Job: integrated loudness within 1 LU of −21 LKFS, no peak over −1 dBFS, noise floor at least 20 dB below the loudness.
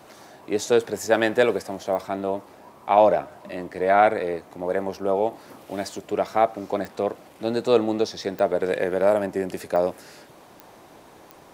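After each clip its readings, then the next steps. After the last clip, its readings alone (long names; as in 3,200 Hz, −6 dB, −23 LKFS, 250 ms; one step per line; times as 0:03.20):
number of clicks 6; integrated loudness −23.5 LKFS; sample peak −4.0 dBFS; target loudness −21.0 LKFS
→ click removal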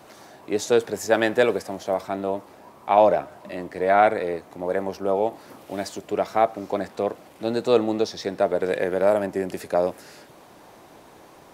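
number of clicks 0; integrated loudness −23.5 LKFS; sample peak −4.0 dBFS; target loudness −21.0 LKFS
→ level +2.5 dB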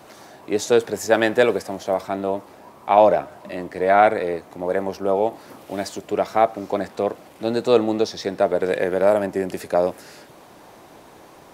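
integrated loudness −21.0 LKFS; sample peak −1.5 dBFS; background noise floor −47 dBFS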